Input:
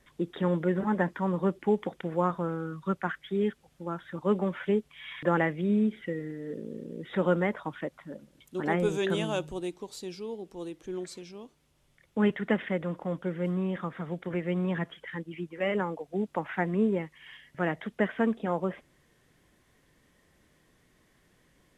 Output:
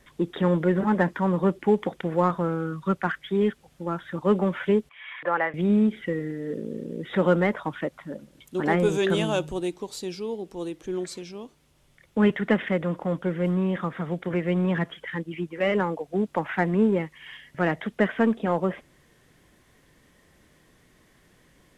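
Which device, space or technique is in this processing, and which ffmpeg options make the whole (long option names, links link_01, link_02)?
parallel distortion: -filter_complex "[0:a]asplit=2[link_01][link_02];[link_02]asoftclip=type=hard:threshold=-29.5dB,volume=-11.5dB[link_03];[link_01][link_03]amix=inputs=2:normalize=0,asettb=1/sr,asplit=3[link_04][link_05][link_06];[link_04]atrim=end=4.894[link_07];[link_05]atrim=start=4.89:end=5.54,asetpts=PTS-STARTPTS,afade=type=in:duration=0.004:curve=qsin,afade=type=out:start_time=0.646:duration=0.004:curve=qsin,acrossover=split=510 2700:gain=0.1 1 0.112[link_08][link_09][link_10];[link_08][link_09][link_10]amix=inputs=3:normalize=0[link_11];[link_06]atrim=start=5.536[link_12];[link_07][link_11]acrossfade=duration=0.004:curve1=hsin:curve2=qsin[link_13];[link_13][link_12]acrossfade=duration=0.004:curve1=qsin:curve2=hsin,volume=4dB"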